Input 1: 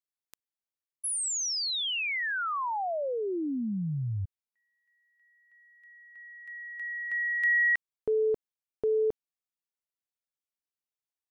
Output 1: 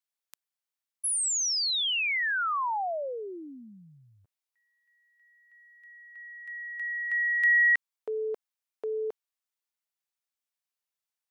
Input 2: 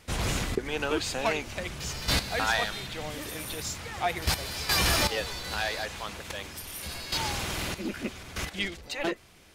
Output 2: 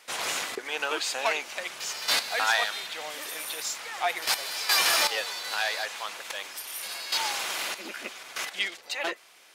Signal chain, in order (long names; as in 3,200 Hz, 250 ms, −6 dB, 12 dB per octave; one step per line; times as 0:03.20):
high-pass filter 680 Hz 12 dB per octave
level +3 dB